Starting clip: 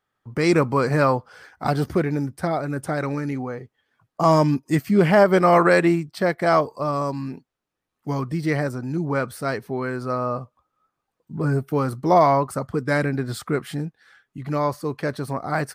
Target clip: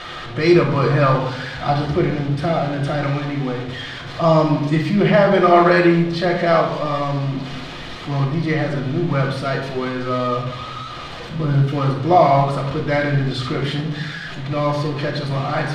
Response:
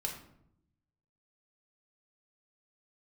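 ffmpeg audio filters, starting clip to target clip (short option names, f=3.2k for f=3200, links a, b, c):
-filter_complex "[0:a]aeval=exprs='val(0)+0.5*0.0447*sgn(val(0))':c=same,lowpass=f=3.7k:t=q:w=1.9[a];[1:a]atrim=start_sample=2205,asetrate=34398,aresample=44100[b];[a][b]afir=irnorm=-1:irlink=0,volume=-2.5dB"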